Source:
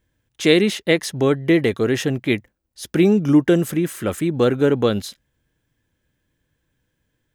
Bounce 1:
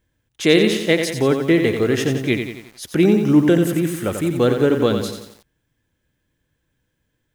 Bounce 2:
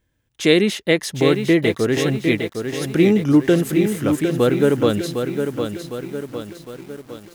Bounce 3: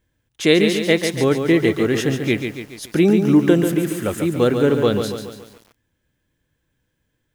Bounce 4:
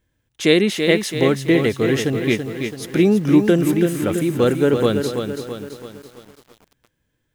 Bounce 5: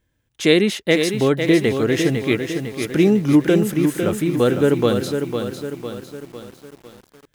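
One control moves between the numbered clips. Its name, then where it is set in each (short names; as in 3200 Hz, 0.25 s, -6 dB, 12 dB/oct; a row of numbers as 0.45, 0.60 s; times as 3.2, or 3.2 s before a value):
lo-fi delay, time: 89, 757, 141, 332, 503 ms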